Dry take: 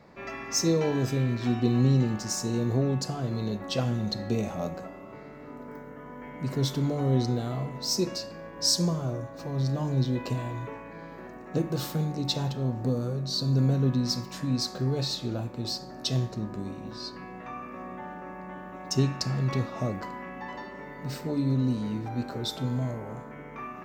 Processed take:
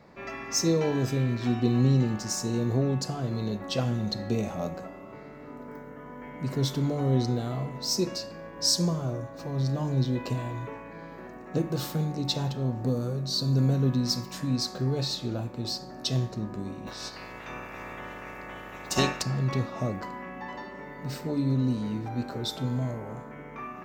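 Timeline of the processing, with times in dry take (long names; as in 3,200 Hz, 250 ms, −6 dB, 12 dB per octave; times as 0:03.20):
0:12.87–0:14.56: high-shelf EQ 7,600 Hz +5 dB
0:16.86–0:19.21: ceiling on every frequency bin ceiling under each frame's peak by 22 dB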